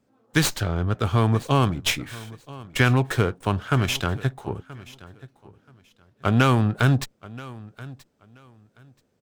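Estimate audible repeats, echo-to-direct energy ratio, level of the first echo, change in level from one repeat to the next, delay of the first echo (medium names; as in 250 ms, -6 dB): 2, -19.5 dB, -19.5 dB, -13.5 dB, 979 ms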